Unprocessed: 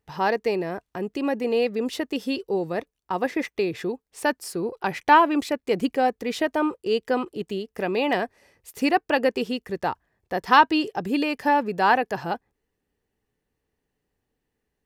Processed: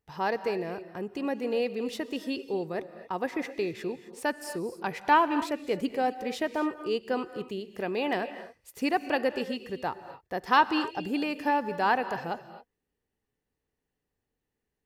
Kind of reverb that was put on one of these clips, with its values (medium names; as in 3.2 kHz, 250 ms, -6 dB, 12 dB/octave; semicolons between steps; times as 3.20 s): gated-style reverb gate 290 ms rising, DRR 11.5 dB; trim -6 dB